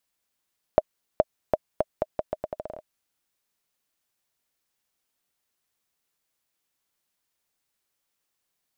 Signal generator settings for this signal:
bouncing ball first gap 0.42 s, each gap 0.8, 622 Hz, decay 36 ms −4 dBFS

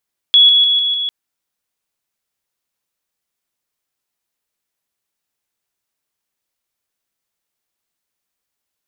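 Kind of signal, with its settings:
level staircase 3,370 Hz −5 dBFS, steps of −3 dB, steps 5, 0.15 s 0.00 s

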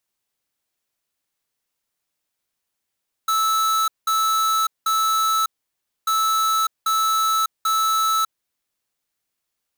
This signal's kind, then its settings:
beeps in groups square 1,310 Hz, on 0.60 s, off 0.19 s, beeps 3, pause 0.61 s, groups 2, −19.5 dBFS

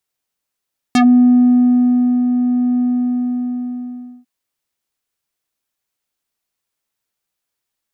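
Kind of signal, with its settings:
subtractive voice square B3 12 dB per octave, low-pass 350 Hz, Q 1.5, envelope 5 octaves, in 0.10 s, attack 2.5 ms, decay 1.29 s, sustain −7 dB, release 1.46 s, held 1.84 s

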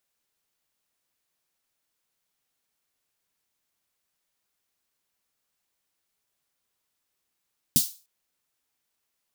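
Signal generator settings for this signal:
synth snare length 0.30 s, tones 160 Hz, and 240 Hz, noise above 3,900 Hz, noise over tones 3 dB, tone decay 0.08 s, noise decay 0.33 s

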